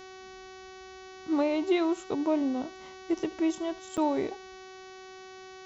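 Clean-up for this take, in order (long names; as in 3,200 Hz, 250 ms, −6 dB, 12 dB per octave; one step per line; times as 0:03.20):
hum removal 376.3 Hz, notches 18
repair the gap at 0:03.97, 6.6 ms
echo removal 75 ms −22 dB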